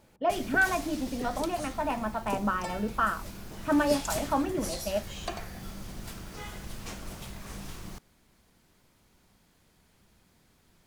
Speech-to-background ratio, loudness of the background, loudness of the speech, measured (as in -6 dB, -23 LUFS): 10.0 dB, -40.0 LUFS, -30.0 LUFS